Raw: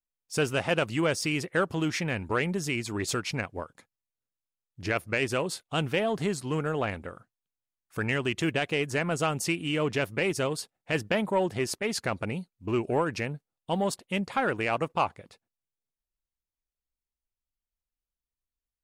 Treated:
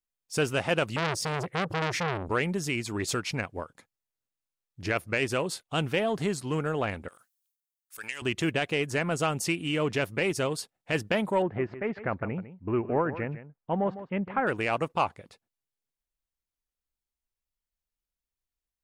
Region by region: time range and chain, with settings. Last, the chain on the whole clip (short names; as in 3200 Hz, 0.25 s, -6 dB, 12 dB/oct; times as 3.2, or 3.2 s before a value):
0.96–2.29 bell 130 Hz +13.5 dB 1.5 oct + core saturation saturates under 2100 Hz
7.08–8.22 differentiator + transient shaper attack +7 dB, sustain +12 dB
11.42–14.47 LPF 2000 Hz 24 dB/oct + echo 0.154 s -13.5 dB
whole clip: dry